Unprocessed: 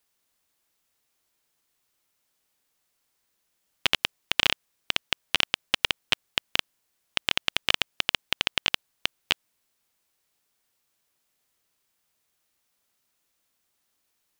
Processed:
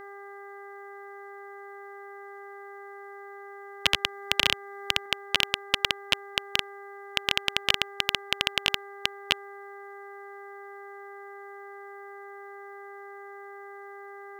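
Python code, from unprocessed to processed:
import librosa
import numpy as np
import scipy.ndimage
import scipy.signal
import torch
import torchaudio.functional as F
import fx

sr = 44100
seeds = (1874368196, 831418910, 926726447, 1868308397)

y = fx.dmg_buzz(x, sr, base_hz=400.0, harmonics=5, level_db=-44.0, tilt_db=-3, odd_only=False)
y = fx.band_squash(y, sr, depth_pct=40, at=(3.86, 5.06))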